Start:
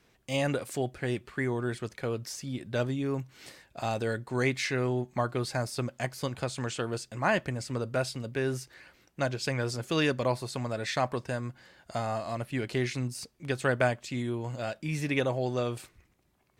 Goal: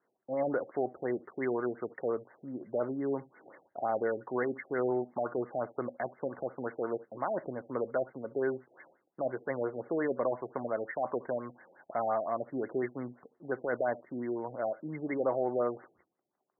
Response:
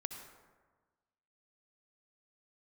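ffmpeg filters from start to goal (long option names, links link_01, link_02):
-filter_complex "[0:a]agate=range=-11dB:threshold=-58dB:ratio=16:detection=peak,highpass=340,acrossover=split=2900[link_01][link_02];[link_02]acompressor=threshold=-53dB:ratio=20[link_03];[link_01][link_03]amix=inputs=2:normalize=0,alimiter=limit=-23.5dB:level=0:latency=1:release=12,aexciter=amount=10.2:drive=8.7:freq=3000,asplit=2[link_04][link_05];[1:a]atrim=start_sample=2205,atrim=end_sample=3528,lowshelf=frequency=61:gain=-11.5[link_06];[link_05][link_06]afir=irnorm=-1:irlink=0,volume=0.5dB[link_07];[link_04][link_07]amix=inputs=2:normalize=0,afftfilt=real='re*lt(b*sr/1024,780*pow(2200/780,0.5+0.5*sin(2*PI*5.7*pts/sr)))':imag='im*lt(b*sr/1024,780*pow(2200/780,0.5+0.5*sin(2*PI*5.7*pts/sr)))':win_size=1024:overlap=0.75,volume=-2dB"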